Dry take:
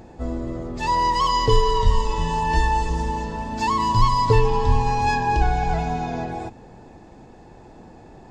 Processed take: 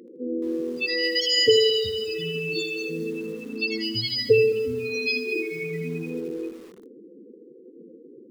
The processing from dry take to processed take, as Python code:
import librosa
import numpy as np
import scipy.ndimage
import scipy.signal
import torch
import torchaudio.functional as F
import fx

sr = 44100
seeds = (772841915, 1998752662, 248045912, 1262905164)

y = scipy.signal.sosfilt(scipy.signal.butter(2, 290.0, 'highpass', fs=sr, output='sos'), x)
y = fx.high_shelf(y, sr, hz=2100.0, db=5.0)
y = fx.spec_topn(y, sr, count=16)
y = fx.brickwall_bandstop(y, sr, low_hz=540.0, high_hz=1900.0)
y = fx.echo_feedback(y, sr, ms=79, feedback_pct=23, wet_db=-10)
y = fx.echo_crushed(y, sr, ms=219, feedback_pct=35, bits=7, wet_db=-14.5)
y = y * 10.0 ** (4.5 / 20.0)